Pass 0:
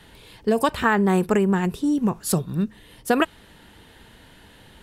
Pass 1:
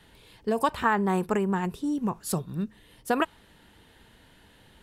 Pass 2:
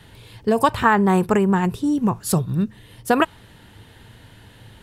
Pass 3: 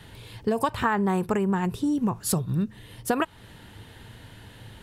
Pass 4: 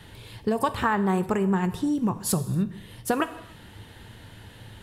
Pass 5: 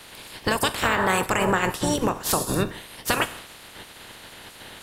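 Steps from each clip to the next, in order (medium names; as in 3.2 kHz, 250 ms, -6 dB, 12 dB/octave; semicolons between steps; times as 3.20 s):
dynamic bell 970 Hz, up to +6 dB, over -35 dBFS, Q 1.7; trim -7 dB
peaking EQ 110 Hz +13.5 dB 0.54 oct; trim +7.5 dB
compression 2.5:1, threshold -24 dBFS, peak gain reduction 9.5 dB
gated-style reverb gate 320 ms falling, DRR 11.5 dB
spectral peaks clipped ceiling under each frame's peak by 25 dB; trim +2 dB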